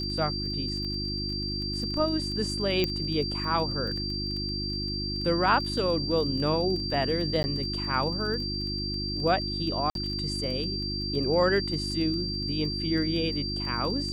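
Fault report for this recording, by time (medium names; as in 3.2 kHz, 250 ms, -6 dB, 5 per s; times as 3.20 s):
crackle 18 per s -34 dBFS
hum 50 Hz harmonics 7 -34 dBFS
whine 4.7 kHz -32 dBFS
2.84 s: pop -13 dBFS
7.43–7.44 s: dropout 10 ms
9.90–9.95 s: dropout 52 ms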